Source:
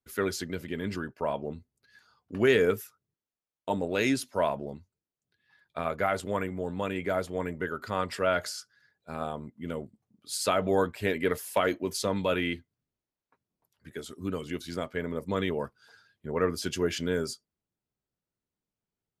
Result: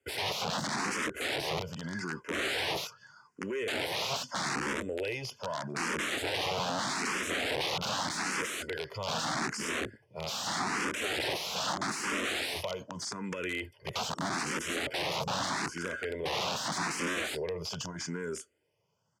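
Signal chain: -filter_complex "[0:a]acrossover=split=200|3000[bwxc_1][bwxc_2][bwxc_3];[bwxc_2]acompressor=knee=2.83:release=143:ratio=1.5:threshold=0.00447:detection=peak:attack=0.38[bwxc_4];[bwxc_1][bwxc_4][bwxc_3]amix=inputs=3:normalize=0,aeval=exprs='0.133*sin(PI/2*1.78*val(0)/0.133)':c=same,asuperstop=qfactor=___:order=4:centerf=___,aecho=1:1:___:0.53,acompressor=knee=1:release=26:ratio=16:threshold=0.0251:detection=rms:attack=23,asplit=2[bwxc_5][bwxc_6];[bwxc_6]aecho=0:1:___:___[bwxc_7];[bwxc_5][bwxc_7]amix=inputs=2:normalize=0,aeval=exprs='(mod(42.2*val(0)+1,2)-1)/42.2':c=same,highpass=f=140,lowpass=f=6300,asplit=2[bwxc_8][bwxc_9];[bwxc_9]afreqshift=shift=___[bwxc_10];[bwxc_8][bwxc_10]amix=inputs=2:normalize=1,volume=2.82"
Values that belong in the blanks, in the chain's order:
2.7, 3900, 2, 1079, 0.335, 0.81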